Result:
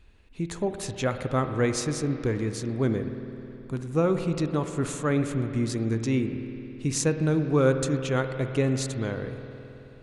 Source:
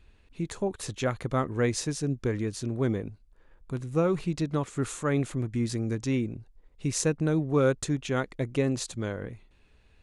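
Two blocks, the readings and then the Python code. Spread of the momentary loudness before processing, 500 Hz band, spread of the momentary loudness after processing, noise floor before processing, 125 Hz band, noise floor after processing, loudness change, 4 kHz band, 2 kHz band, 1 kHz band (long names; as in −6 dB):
9 LU, +2.5 dB, 12 LU, −60 dBFS, +2.5 dB, −47 dBFS, +2.0 dB, +1.5 dB, +2.0 dB, +2.0 dB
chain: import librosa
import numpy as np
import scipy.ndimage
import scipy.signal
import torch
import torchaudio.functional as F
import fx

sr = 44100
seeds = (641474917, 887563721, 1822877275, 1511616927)

y = fx.rev_spring(x, sr, rt60_s=3.3, pass_ms=(53,), chirp_ms=70, drr_db=7.5)
y = y * librosa.db_to_amplitude(1.5)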